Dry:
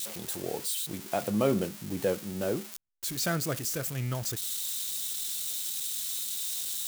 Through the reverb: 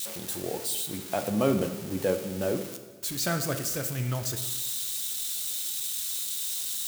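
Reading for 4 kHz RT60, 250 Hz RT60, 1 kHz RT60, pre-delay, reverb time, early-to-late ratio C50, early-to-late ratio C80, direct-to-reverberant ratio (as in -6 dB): 1.3 s, 1.4 s, 1.4 s, 3 ms, 1.4 s, 9.5 dB, 11.0 dB, 7.0 dB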